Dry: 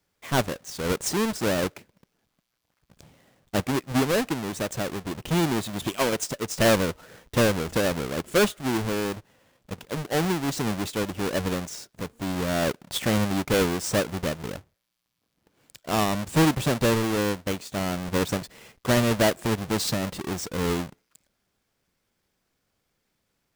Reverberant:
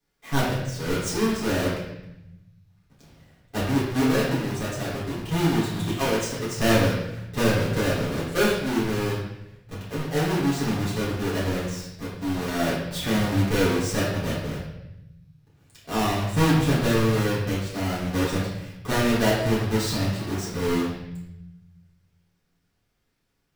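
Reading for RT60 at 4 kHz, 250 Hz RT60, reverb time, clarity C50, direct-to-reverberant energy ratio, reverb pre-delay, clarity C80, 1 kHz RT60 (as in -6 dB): 0.85 s, 1.7 s, 0.85 s, 1.0 dB, -8.0 dB, 7 ms, 4.5 dB, 0.85 s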